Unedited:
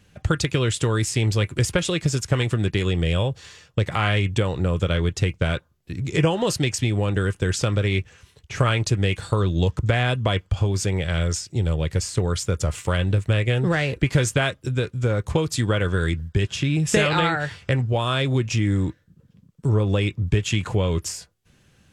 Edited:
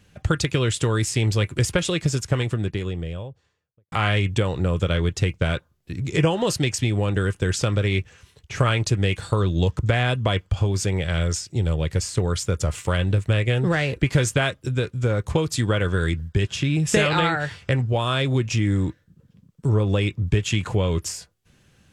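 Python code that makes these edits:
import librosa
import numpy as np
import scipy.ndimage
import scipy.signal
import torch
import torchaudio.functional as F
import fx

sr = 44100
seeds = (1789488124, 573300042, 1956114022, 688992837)

y = fx.studio_fade_out(x, sr, start_s=1.95, length_s=1.97)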